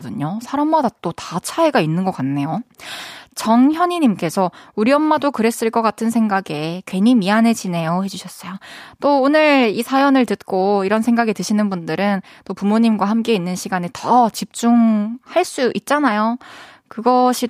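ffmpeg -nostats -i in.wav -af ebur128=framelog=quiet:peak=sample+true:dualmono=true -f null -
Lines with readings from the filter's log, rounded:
Integrated loudness:
  I:         -14.2 LUFS
  Threshold: -24.6 LUFS
Loudness range:
  LRA:         2.5 LU
  Threshold: -34.4 LUFS
  LRA low:   -15.6 LUFS
  LRA high:  -13.1 LUFS
Sample peak:
  Peak:       -1.4 dBFS
True peak:
  Peak:       -1.4 dBFS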